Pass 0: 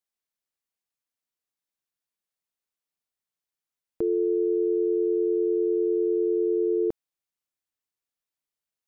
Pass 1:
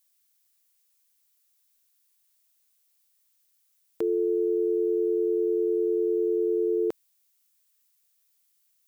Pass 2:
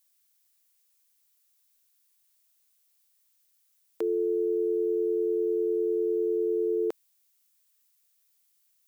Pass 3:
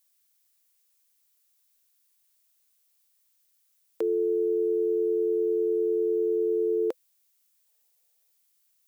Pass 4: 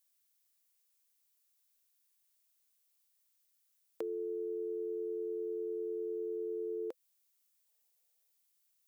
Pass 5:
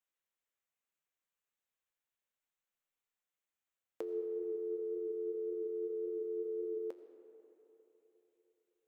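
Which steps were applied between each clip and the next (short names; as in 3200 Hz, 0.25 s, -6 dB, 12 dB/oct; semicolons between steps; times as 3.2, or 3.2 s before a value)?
tilt +4.5 dB/oct; gain +5 dB
HPF 340 Hz 12 dB/oct
spectral gain 7.66–8.32, 350–910 Hz +10 dB; bell 510 Hz +8 dB 0.23 oct
compressor 4:1, threshold -30 dBFS, peak gain reduction 6.5 dB; gain -6.5 dB
Wiener smoothing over 9 samples; flange 1.8 Hz, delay 8 ms, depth 3.5 ms, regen +74%; reverb RT60 3.6 s, pre-delay 45 ms, DRR 9 dB; gain +3 dB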